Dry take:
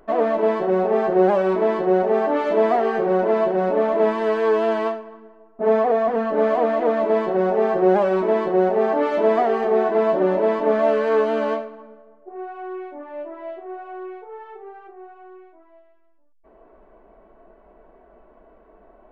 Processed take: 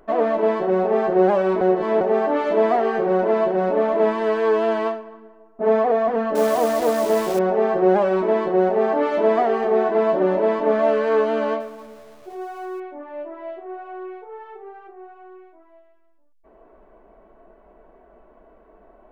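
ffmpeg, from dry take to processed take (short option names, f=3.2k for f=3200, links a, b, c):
-filter_complex "[0:a]asettb=1/sr,asplit=3[a][b][c];[a]atrim=end=6.354[d];[b]atrim=start=6.35:end=7.39,asetpts=PTS-STARTPTS,afade=t=in:d=0.004:c=qsin,afade=t=out:st=1.036:d=0.004:c=qsin,acrusher=bits=6:dc=4:mix=0:aa=0.000001[e];[c]atrim=start=7.386[f];[d][e]acrossfade=d=0.004:c1=hsin:c2=qsin[g];[g][f]acrossfade=d=0.004:c1=qsin:c2=hsin,asettb=1/sr,asplit=3[h][i][j];[h]atrim=end=11.604[k];[i]atrim=start=11.6:end=12.8,asetpts=PTS-STARTPTS,afade=t=in:d=0.004:c=qsin,afade=t=out:st=1.196:d=0.004:c=qsin,aeval=exprs='val(0)+0.5*0.00596*sgn(val(0))':c=same[l];[j]atrim=start=12.796[m];[k][l]acrossfade=d=0.004:c1=hsin:c2=qsin[n];[n][m]acrossfade=d=0.004:c1=qsin:c2=hsin,asplit=3[o][p][q];[o]atrim=end=1.612[r];[p]atrim=start=1.608:end=2.012,asetpts=PTS-STARTPTS,areverse[s];[q]atrim=start=2.008[t];[r][s]acrossfade=d=0.004:c1=hsin:c2=hsin[u];[u][t]acrossfade=d=0.004:c1=hsin:c2=hsin"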